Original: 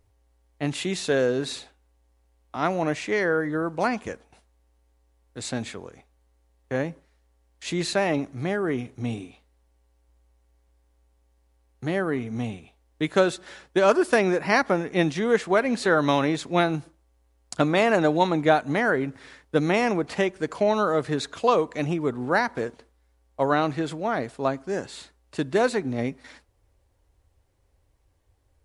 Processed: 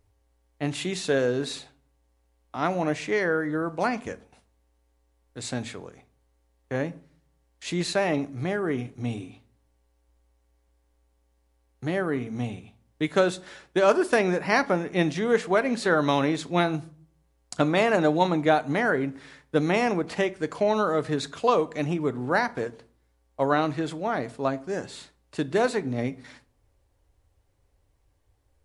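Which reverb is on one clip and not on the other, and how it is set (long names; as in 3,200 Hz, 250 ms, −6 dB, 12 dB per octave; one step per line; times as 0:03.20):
rectangular room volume 350 cubic metres, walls furnished, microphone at 0.37 metres
level −1.5 dB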